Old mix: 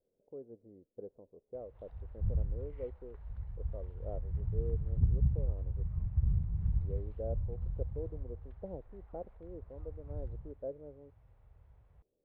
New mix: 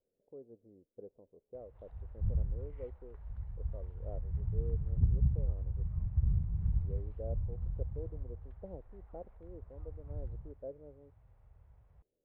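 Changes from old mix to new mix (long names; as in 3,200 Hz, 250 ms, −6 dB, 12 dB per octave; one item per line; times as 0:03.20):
speech −3.5 dB
master: add high-shelf EQ 4,200 Hz −10 dB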